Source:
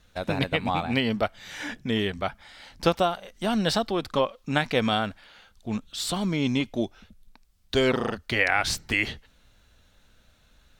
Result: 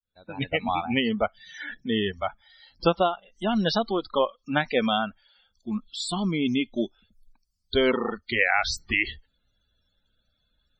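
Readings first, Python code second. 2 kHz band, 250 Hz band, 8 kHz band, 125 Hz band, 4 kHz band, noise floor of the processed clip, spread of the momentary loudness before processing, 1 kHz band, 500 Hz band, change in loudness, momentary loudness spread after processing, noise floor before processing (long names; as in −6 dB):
+0.5 dB, 0.0 dB, −4.5 dB, −3.5 dB, −0.5 dB, −75 dBFS, 10 LU, +0.5 dB, +0.5 dB, +0.5 dB, 10 LU, −61 dBFS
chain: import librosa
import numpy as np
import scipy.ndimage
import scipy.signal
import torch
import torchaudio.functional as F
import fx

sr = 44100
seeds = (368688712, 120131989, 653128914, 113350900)

y = fx.fade_in_head(x, sr, length_s=0.51)
y = fx.spec_topn(y, sr, count=64)
y = fx.noise_reduce_blind(y, sr, reduce_db=14)
y = y * 10.0 ** (1.0 / 20.0)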